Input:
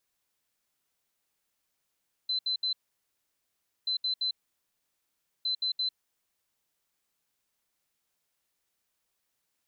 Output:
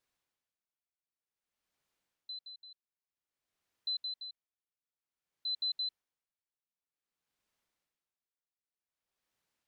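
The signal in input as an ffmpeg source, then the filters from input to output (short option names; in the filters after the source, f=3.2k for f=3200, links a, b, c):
-f lavfi -i "aevalsrc='0.0473*sin(2*PI*4050*t)*clip(min(mod(mod(t,1.58),0.17),0.1-mod(mod(t,1.58),0.17))/0.005,0,1)*lt(mod(t,1.58),0.51)':d=4.74:s=44100"
-af "lowpass=f=3.8k:p=1,aeval=exprs='val(0)*pow(10,-21*(0.5-0.5*cos(2*PI*0.53*n/s))/20)':c=same"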